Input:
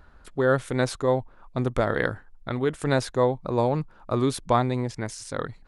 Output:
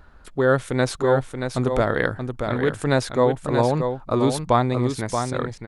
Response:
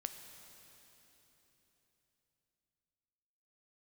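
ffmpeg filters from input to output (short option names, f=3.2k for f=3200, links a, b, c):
-af "aecho=1:1:629:0.473,volume=3dB"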